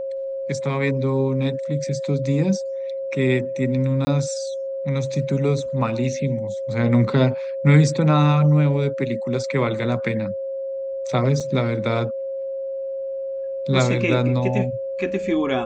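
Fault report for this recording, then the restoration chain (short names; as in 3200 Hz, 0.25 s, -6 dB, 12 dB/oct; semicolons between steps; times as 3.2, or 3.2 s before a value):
tone 540 Hz -25 dBFS
4.05–4.07 gap 20 ms
11.4 gap 4.6 ms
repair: notch 540 Hz, Q 30; interpolate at 4.05, 20 ms; interpolate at 11.4, 4.6 ms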